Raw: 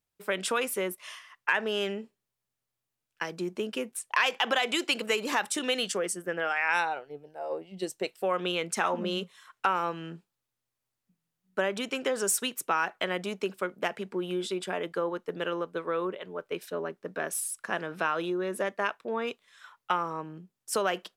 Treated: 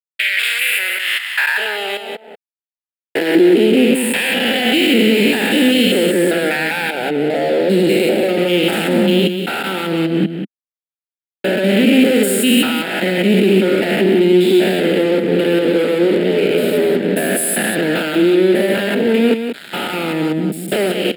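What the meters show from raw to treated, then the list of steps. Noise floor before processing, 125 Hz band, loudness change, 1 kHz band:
under -85 dBFS, +21.5 dB, +16.0 dB, +5.5 dB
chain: spectrogram pixelated in time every 200 ms; treble shelf 9.9 kHz -5.5 dB; compression 6:1, threshold -39 dBFS, peak gain reduction 12.5 dB; fuzz box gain 45 dB, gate -54 dBFS; static phaser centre 2.6 kHz, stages 4; high-pass sweep 2.5 kHz -> 220 Hz, 0.08–3.96 s; delay 185 ms -7.5 dB; trim +2 dB

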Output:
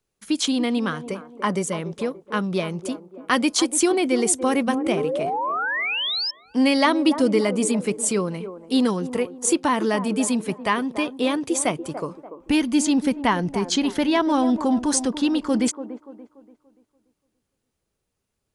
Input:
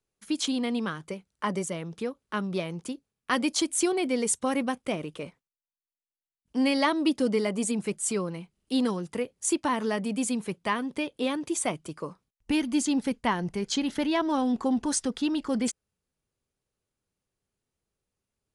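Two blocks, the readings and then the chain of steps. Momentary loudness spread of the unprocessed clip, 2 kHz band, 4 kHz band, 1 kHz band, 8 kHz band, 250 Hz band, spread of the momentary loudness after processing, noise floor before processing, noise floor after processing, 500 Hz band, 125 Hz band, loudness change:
10 LU, +7.5 dB, +7.5 dB, +7.0 dB, +6.0 dB, +6.5 dB, 9 LU, under -85 dBFS, -79 dBFS, +7.0 dB, +6.0 dB, +6.0 dB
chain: painted sound rise, 4.67–6.31 s, 220–5400 Hz -31 dBFS; feedback echo behind a band-pass 289 ms, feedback 38%, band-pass 560 Hz, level -9.5 dB; trim +6 dB

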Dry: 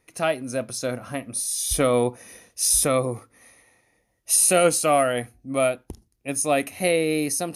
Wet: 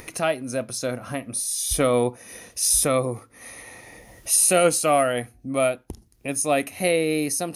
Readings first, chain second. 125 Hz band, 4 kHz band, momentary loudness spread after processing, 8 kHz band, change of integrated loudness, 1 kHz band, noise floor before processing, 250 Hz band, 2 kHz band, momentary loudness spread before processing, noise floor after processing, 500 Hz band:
0.0 dB, 0.0 dB, 19 LU, 0.0 dB, 0.0 dB, 0.0 dB, -70 dBFS, 0.0 dB, 0.0 dB, 12 LU, -57 dBFS, 0.0 dB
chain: upward compressor, threshold -26 dBFS

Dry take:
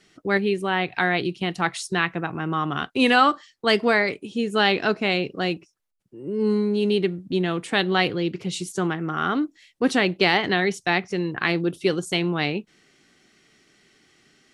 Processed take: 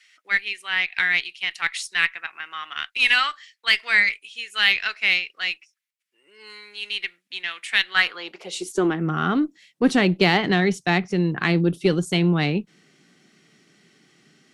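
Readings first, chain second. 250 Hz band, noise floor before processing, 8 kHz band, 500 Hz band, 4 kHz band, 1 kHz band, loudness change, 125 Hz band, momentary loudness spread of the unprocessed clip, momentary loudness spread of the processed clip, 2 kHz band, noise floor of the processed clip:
-0.5 dB, -65 dBFS, +0.5 dB, -4.0 dB, +3.0 dB, -4.5 dB, +1.5 dB, +3.0 dB, 8 LU, 13 LU, +3.5 dB, -73 dBFS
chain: high-pass sweep 2.1 kHz -> 160 Hz, 7.86–9.11 s; Chebyshev shaper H 6 -33 dB, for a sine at -3 dBFS

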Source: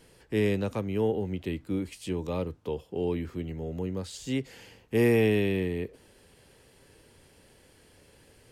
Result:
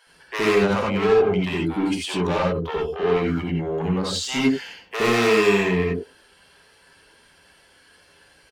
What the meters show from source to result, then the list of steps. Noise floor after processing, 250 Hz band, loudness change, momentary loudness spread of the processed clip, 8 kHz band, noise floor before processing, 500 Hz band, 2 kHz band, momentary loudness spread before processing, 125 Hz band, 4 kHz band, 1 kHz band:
-56 dBFS, +6.5 dB, +8.0 dB, 8 LU, +12.5 dB, -59 dBFS, +8.5 dB, +12.5 dB, 12 LU, +4.5 dB, +14.5 dB, +16.5 dB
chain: expander on every frequency bin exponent 1.5; treble shelf 4.6 kHz -12 dB; overdrive pedal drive 30 dB, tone 5.7 kHz, clips at -14 dBFS; bands offset in time highs, lows 70 ms, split 560 Hz; gated-style reverb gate 110 ms rising, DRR -1.5 dB

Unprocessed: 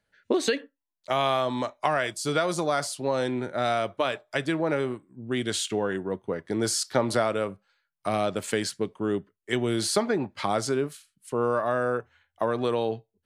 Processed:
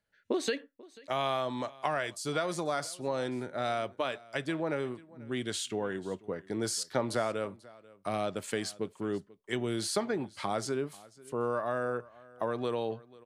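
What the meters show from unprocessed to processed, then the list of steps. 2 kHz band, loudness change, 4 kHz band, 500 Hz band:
-6.5 dB, -6.5 dB, -6.5 dB, -6.5 dB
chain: delay 489 ms -22 dB; trim -6.5 dB

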